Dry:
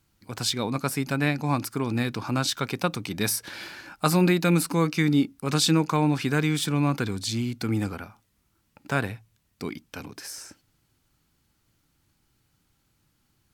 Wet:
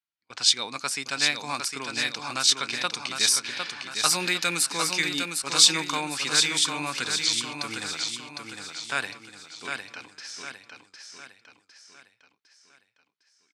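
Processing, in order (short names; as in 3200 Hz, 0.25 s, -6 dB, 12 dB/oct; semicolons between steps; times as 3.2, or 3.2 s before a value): low-pass opened by the level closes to 2800 Hz, open at -19 dBFS; weighting filter ITU-R 468; gate -43 dBFS, range -22 dB; on a send: feedback echo 0.756 s, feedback 45%, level -5.5 dB; on the sum: gain -3 dB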